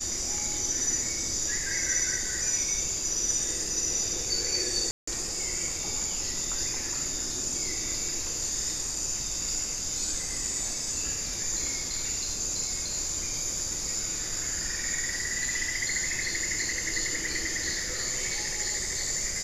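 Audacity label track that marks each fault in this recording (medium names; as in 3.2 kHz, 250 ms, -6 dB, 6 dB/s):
4.910000	5.070000	dropout 164 ms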